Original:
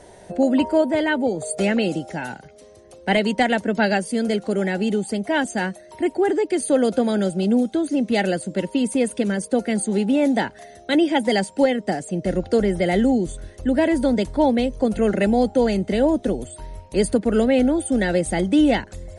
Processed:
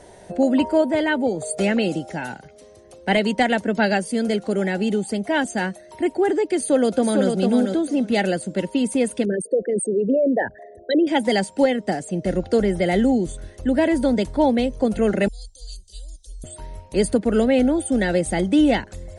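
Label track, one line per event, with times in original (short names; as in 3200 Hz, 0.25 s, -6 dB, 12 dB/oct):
6.570000	7.290000	echo throw 0.45 s, feedback 15%, level -4.5 dB
9.250000	11.070000	formant sharpening exponent 3
15.280000	16.440000	inverse Chebyshev band-stop 110–2300 Hz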